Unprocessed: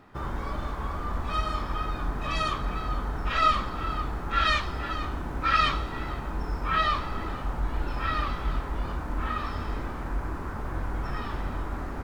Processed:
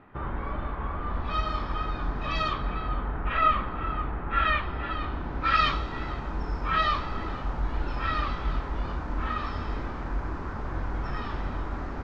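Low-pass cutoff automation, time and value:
low-pass 24 dB/octave
0.95 s 2.9 kHz
1.37 s 5 kHz
2.41 s 5 kHz
3.20 s 2.8 kHz
4.55 s 2.8 kHz
5.76 s 6 kHz

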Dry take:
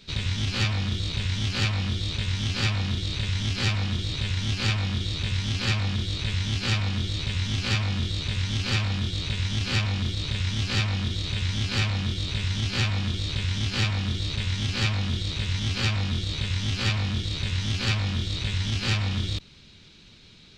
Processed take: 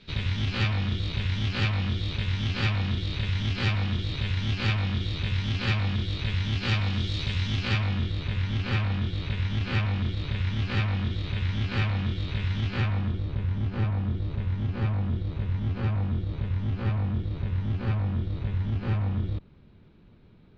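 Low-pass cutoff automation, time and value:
6.52 s 3.1 kHz
7.19 s 4.8 kHz
8.15 s 2.2 kHz
12.64 s 2.2 kHz
13.31 s 1 kHz

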